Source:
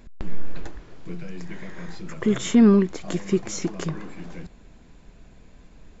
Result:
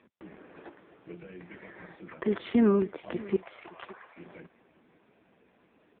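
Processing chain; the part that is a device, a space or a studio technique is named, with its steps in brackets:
0:03.36–0:04.16: inverse Chebyshev high-pass filter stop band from 170 Hz, stop band 60 dB
satellite phone (band-pass filter 300–3,200 Hz; single-tap delay 567 ms −19.5 dB; level −2 dB; AMR narrowband 5.9 kbit/s 8,000 Hz)

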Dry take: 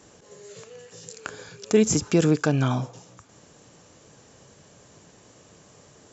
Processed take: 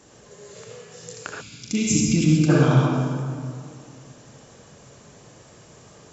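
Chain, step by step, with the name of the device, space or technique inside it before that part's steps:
stairwell (convolution reverb RT60 2.2 s, pre-delay 60 ms, DRR −2.5 dB)
0:01.41–0:02.49: gain on a spectral selection 330–2,000 Hz −19 dB
0:01.48–0:02.01: double-tracking delay 40 ms −5.5 dB

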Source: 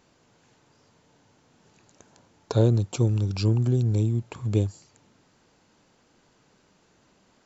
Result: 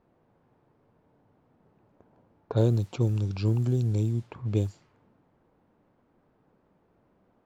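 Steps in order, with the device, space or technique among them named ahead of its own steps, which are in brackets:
cassette deck with a dynamic noise filter (white noise bed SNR 30 dB; low-pass that shuts in the quiet parts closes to 820 Hz, open at −17.5 dBFS)
level −3 dB

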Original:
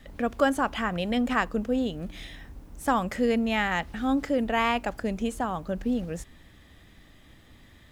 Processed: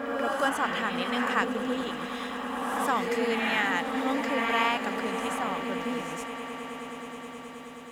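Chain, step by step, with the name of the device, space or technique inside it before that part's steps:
parametric band 610 Hz −4.5 dB 0.44 octaves
ghost voice (reversed playback; convolution reverb RT60 2.0 s, pre-delay 72 ms, DRR 1 dB; reversed playback; high-pass filter 580 Hz 6 dB per octave)
echo that builds up and dies away 106 ms, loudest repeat 8, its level −18 dB

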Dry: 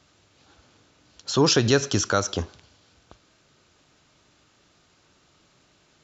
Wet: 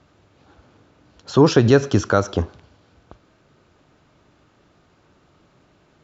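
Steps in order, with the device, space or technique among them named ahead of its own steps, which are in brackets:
through cloth (high-shelf EQ 2,600 Hz −17 dB)
level +7 dB

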